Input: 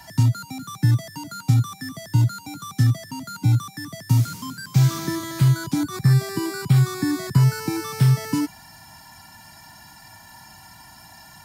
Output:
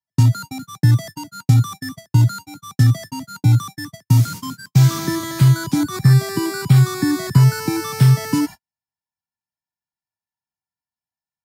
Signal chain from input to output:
noise gate −33 dBFS, range −56 dB
level +4.5 dB

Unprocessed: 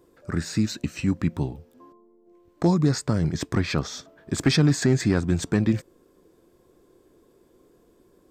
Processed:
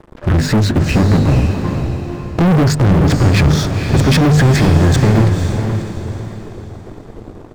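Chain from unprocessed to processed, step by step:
RIAA equalisation playback
mains-hum notches 50/100/150/200/250 Hz
brickwall limiter −10.5 dBFS, peak gain reduction 9 dB
leveller curve on the samples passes 5
tempo change 1.1×
feedback delay with all-pass diffusion 496 ms, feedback 41%, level −6.5 dB
level +2 dB

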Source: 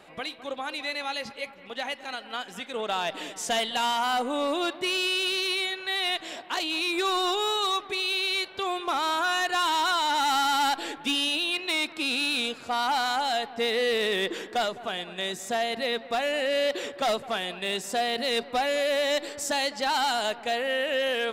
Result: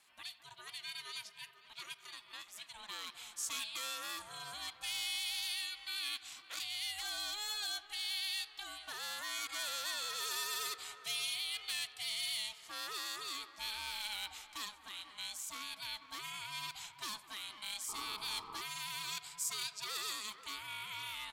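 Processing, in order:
on a send: feedback echo with a band-pass in the loop 486 ms, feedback 57%, band-pass 760 Hz, level −11.5 dB
on the sum: sound drawn into the spectrogram noise, 0:17.88–0:18.62, 360–900 Hz −27 dBFS
ring modulation 420 Hz
first-order pre-emphasis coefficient 0.97
far-end echo of a speakerphone 90 ms, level −19 dB
level −1.5 dB

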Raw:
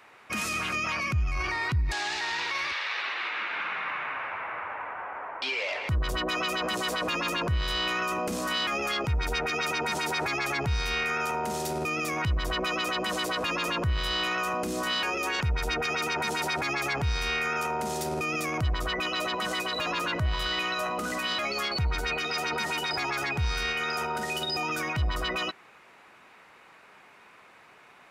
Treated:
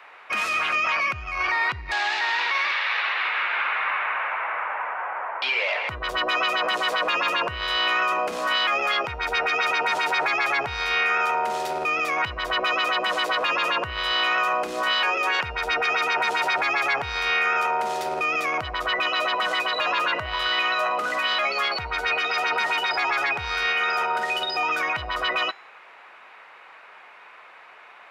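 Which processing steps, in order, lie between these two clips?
three-way crossover with the lows and the highs turned down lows −20 dB, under 470 Hz, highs −15 dB, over 3,900 Hz
hum removal 398.8 Hz, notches 17
level +8 dB

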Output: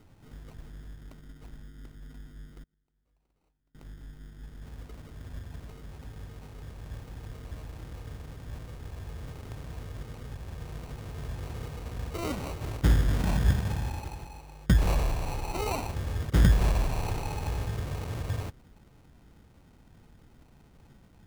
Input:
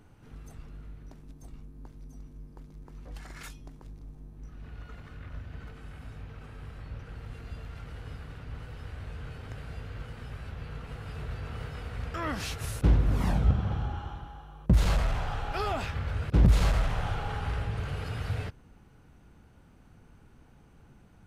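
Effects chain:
decimation without filtering 26×
0:02.63–0:03.75: gate with flip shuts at −43 dBFS, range −32 dB

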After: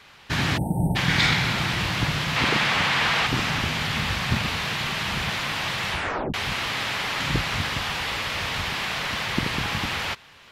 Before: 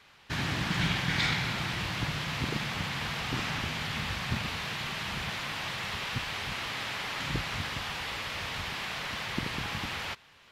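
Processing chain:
0:00.58–0:00.96: time-frequency box erased 940–8,000 Hz
0:02.36–0:03.27: mid-hump overdrive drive 14 dB, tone 3,200 Hz, clips at −18 dBFS
0:05.89: tape stop 0.45 s
level +8 dB

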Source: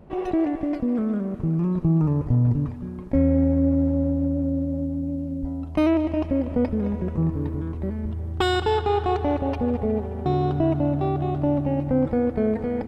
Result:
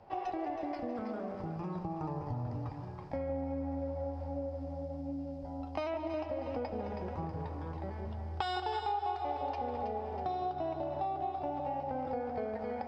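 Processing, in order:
three-way crossover with the lows and the highs turned down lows −15 dB, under 480 Hz, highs −18 dB, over 6,800 Hz
on a send: delay that swaps between a low-pass and a high-pass 161 ms, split 810 Hz, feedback 59%, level −4 dB
on the sum: flanger 0.46 Hz, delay 8.5 ms, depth 4.3 ms, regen −57%
thirty-one-band graphic EQ 100 Hz +12 dB, 800 Hz +11 dB, 5,000 Hz +11 dB
downward compressor 4 to 1, threshold −34 dBFS, peak gain reduction 14.5 dB

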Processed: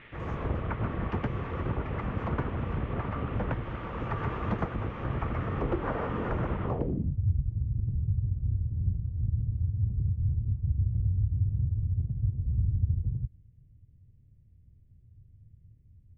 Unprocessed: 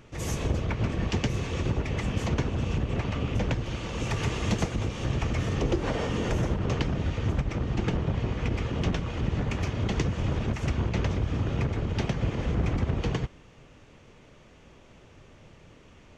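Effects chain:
noise in a band 1,800–3,500 Hz −43 dBFS
low-pass filter sweep 1,300 Hz → 100 Hz, 0:06.64–0:07.20
level −4 dB

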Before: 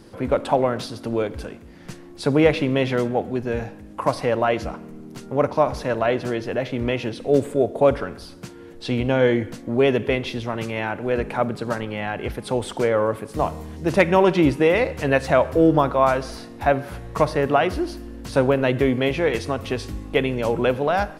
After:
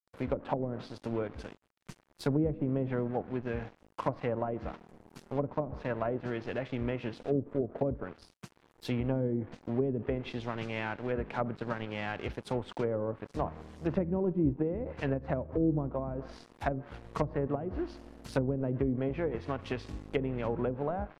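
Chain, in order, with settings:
dead-zone distortion −37 dBFS
treble cut that deepens with the level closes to 360 Hz, closed at −15 dBFS
dynamic equaliser 550 Hz, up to −4 dB, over −29 dBFS, Q 0.73
level −6.5 dB

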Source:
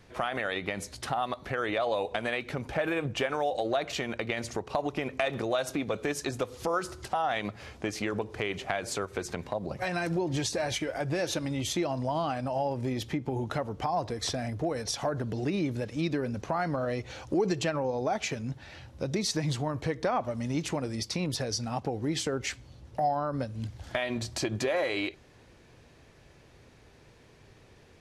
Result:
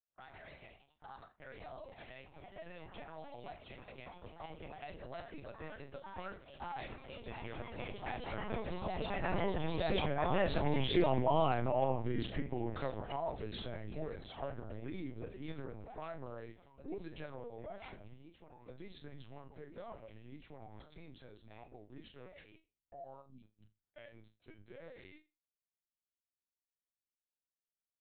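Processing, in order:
source passing by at 0:11.08, 25 m/s, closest 19 metres
noise gate −56 dBFS, range −32 dB
delay with pitch and tempo change per echo 148 ms, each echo +2 semitones, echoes 3, each echo −6 dB
time-frequency box erased 0:23.21–0:23.44, 260–2,200 Hz
flutter between parallel walls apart 6.5 metres, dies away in 0.25 s
linear-prediction vocoder at 8 kHz pitch kept
highs frequency-modulated by the lows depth 0.14 ms

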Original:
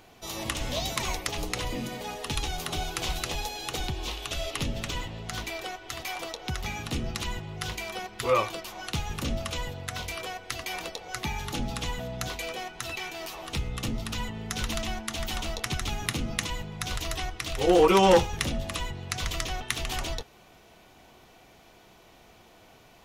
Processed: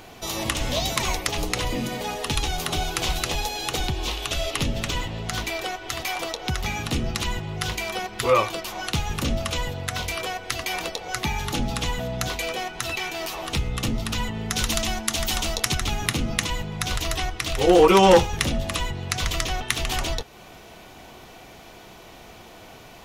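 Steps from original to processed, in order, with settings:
in parallel at 0 dB: downward compressor, threshold −42 dBFS, peak gain reduction 24.5 dB
0:14.56–0:15.75: on the sum: bass and treble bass −1 dB, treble +6 dB
level +4 dB

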